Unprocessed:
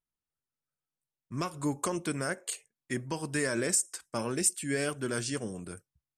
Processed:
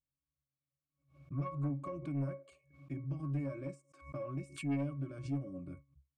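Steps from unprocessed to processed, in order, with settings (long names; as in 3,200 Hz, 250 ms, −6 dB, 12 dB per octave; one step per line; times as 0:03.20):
low-shelf EQ 170 Hz +5 dB
downward compressor 3 to 1, threshold −33 dBFS, peak gain reduction 9 dB
resonances in every octave C#, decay 0.2 s
soft clipping −36.5 dBFS, distortion −14 dB
background raised ahead of every attack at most 130 dB per second
level +8 dB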